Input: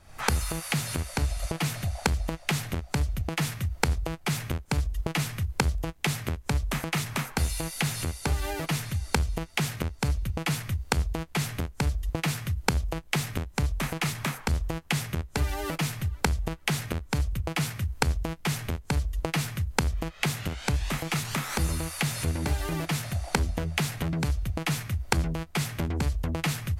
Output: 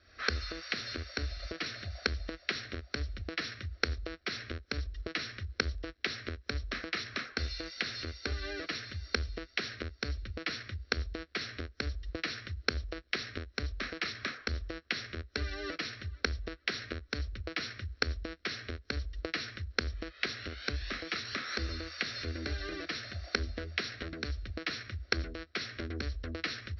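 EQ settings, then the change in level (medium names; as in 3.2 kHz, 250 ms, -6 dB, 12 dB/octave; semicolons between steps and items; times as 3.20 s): high-pass 52 Hz; rippled Chebyshev low-pass 5.7 kHz, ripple 9 dB; static phaser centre 370 Hz, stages 4; +3.5 dB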